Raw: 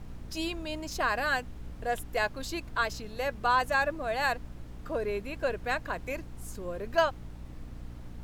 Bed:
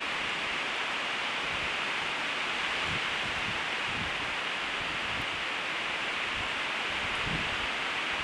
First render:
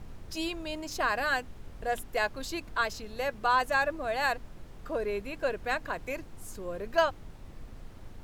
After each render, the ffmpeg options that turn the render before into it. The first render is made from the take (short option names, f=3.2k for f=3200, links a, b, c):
-af "bandreject=f=60:t=h:w=4,bandreject=f=120:t=h:w=4,bandreject=f=180:t=h:w=4,bandreject=f=240:t=h:w=4,bandreject=f=300:t=h:w=4"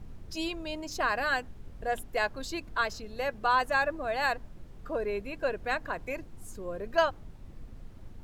-af "afftdn=nr=6:nf=-48"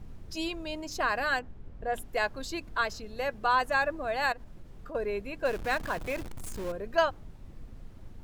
-filter_complex "[0:a]asettb=1/sr,asplit=3[a][b][c];[a]atrim=end=1.394[d];[b]atrim=start=1.39:end=1.94,asetpts=PTS-STARTPTS,afade=t=in:d=0.004:c=qsin,afade=t=out:st=0.546:d=0.004:c=qsin,lowpass=f=1.8k:p=1[e];[c]atrim=start=1.936[f];[d][e]acrossfade=d=0.004:c1=hsin:c2=qsin[g];[g][f]acrossfade=d=0.004:c1=qsin:c2=hsin,asettb=1/sr,asplit=3[h][i][j];[h]atrim=end=4.324[k];[i]atrim=start=4.32:end=4.95,asetpts=PTS-STARTPTS,afade=t=in:d=0.004:c=qsin,afade=t=out:st=0.626:d=0.004:c=qsin,acompressor=threshold=-39dB:ratio=5:attack=3.2:release=140:knee=1:detection=peak[l];[j]atrim=start=4.946[m];[k][l]acrossfade=d=0.004:c1=hsin:c2=qsin[n];[n][m]acrossfade=d=0.004:c1=qsin:c2=hsin,asettb=1/sr,asplit=3[o][p][q];[o]atrim=end=5.454[r];[p]atrim=start=5.45:end=6.72,asetpts=PTS-STARTPTS,afade=t=in:d=0.004:c=qsin,afade=t=out:st=1.266:d=0.004:c=qsin,aeval=exprs='val(0)+0.5*0.015*sgn(val(0))':c=same[s];[q]atrim=start=6.716[t];[r][s]acrossfade=d=0.004:c1=hsin:c2=qsin[u];[u][t]acrossfade=d=0.004:c1=qsin:c2=hsin"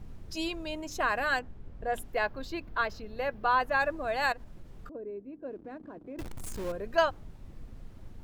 -filter_complex "[0:a]asettb=1/sr,asplit=3[a][b][c];[a]atrim=end=0.694[d];[b]atrim=start=0.69:end=1.3,asetpts=PTS-STARTPTS,afade=t=in:d=0.004:c=qsin,afade=t=out:st=0.606:d=0.004:c=qsin,equalizer=f=4.7k:t=o:w=0.23:g=-11[e];[c]atrim=start=1.296[f];[d][e]acrossfade=d=0.004:c1=hsin:c2=qsin[g];[g][f]acrossfade=d=0.004:c1=qsin:c2=hsin,asplit=3[h][i][j];[h]afade=t=out:st=2.12:d=0.02[k];[i]equalizer=f=8.3k:w=0.84:g=-15,afade=t=in:st=2.12:d=0.02,afade=t=out:st=3.79:d=0.02[l];[j]afade=t=in:st=3.79:d=0.02[m];[k][l][m]amix=inputs=3:normalize=0,asettb=1/sr,asplit=3[n][o][p];[n]atrim=end=4.894[q];[o]atrim=start=4.89:end=6.19,asetpts=PTS-STARTPTS,afade=t=in:d=0.004:c=qsin,afade=t=out:st=1.296:d=0.004:c=qsin,bandpass=f=290:t=q:w=2.8[r];[p]atrim=start=6.186[s];[q][r]acrossfade=d=0.004:c1=hsin:c2=qsin[t];[t][s]acrossfade=d=0.004:c1=qsin:c2=hsin"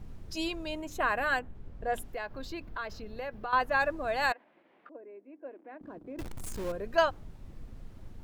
-filter_complex "[0:a]asettb=1/sr,asplit=3[a][b][c];[a]atrim=end=0.824[d];[b]atrim=start=0.82:end=1.55,asetpts=PTS-STARTPTS,afade=t=in:d=0.004:c=qsin,afade=t=out:st=0.726:d=0.004:c=qsin,equalizer=f=5.3k:t=o:w=0.57:g=-11.5[e];[c]atrim=start=1.546[f];[d][e]acrossfade=d=0.004:c1=hsin:c2=qsin[g];[g][f]acrossfade=d=0.004:c1=qsin:c2=hsin,asettb=1/sr,asplit=3[h][i][j];[h]atrim=end=2.054[k];[i]atrim=start=2.05:end=3.53,asetpts=PTS-STARTPTS,afade=t=in:d=0.004:c=qsin,afade=t=out:st=1.476:d=0.004:c=qsin,acompressor=threshold=-34dB:ratio=4:attack=3.2:release=140:knee=1:detection=peak[l];[j]atrim=start=3.526[m];[k][l]acrossfade=d=0.004:c1=hsin:c2=qsin[n];[n][m]acrossfade=d=0.004:c1=qsin:c2=hsin,asettb=1/sr,asplit=3[o][p][q];[o]atrim=end=4.324[r];[p]atrim=start=4.32:end=5.81,asetpts=PTS-STARTPTS,afade=t=in:d=0.004:c=qsin,afade=t=out:st=1.486:d=0.004:c=qsin,highpass=f=330:w=0.5412,highpass=f=330:w=1.3066,equalizer=f=430:t=q:w=4:g=-10,equalizer=f=1.3k:t=q:w=4:g=-4,equalizer=f=2.1k:t=q:w=4:g=4,lowpass=f=2.9k:w=0.5412,lowpass=f=2.9k:w=1.3066[s];[q]atrim=start=5.806[t];[r][s]acrossfade=d=0.004:c1=hsin:c2=qsin[u];[u][t]acrossfade=d=0.004:c1=qsin:c2=hsin"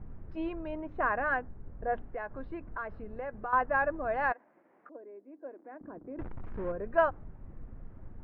-af "lowpass=f=1.8k:w=0.5412,lowpass=f=1.8k:w=1.3066"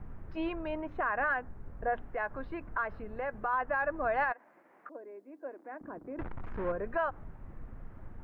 -filter_complex "[0:a]acrossover=split=760[a][b];[b]acontrast=69[c];[a][c]amix=inputs=2:normalize=0,alimiter=limit=-22dB:level=0:latency=1:release=143"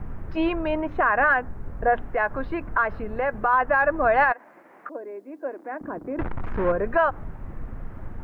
-af "volume=11dB"